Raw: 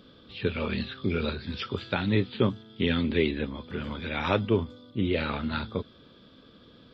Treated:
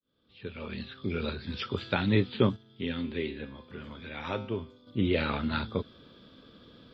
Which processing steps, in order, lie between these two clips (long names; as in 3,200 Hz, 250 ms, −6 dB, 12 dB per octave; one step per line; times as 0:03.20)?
fade in at the beginning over 1.86 s
0:02.56–0:04.87: tuned comb filter 130 Hz, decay 0.59 s, harmonics all, mix 70%